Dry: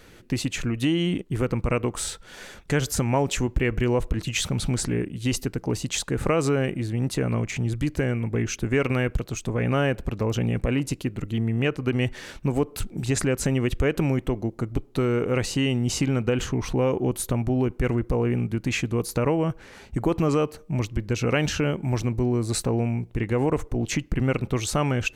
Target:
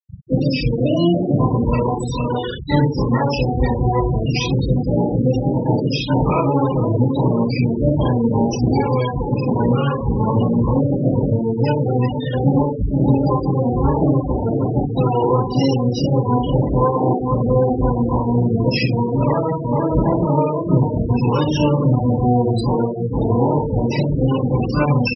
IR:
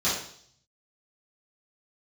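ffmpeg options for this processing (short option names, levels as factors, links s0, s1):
-filter_complex "[0:a]asplit=2[s0][s1];[s1]adelay=466.5,volume=0.251,highshelf=f=4000:g=-10.5[s2];[s0][s2]amix=inputs=2:normalize=0,acompressor=threshold=0.0224:ratio=12,asplit=3[s3][s4][s5];[s4]asetrate=35002,aresample=44100,atempo=1.25992,volume=0.126[s6];[s5]asetrate=88200,aresample=44100,atempo=0.5,volume=0.891[s7];[s3][s6][s7]amix=inputs=3:normalize=0[s8];[1:a]atrim=start_sample=2205,afade=t=out:st=0.29:d=0.01,atrim=end_sample=13230,asetrate=34839,aresample=44100[s9];[s8][s9]afir=irnorm=-1:irlink=0,afftfilt=real='re*gte(hypot(re,im),0.141)':imag='im*gte(hypot(re,im),0.141)':win_size=1024:overlap=0.75,volume=1.33"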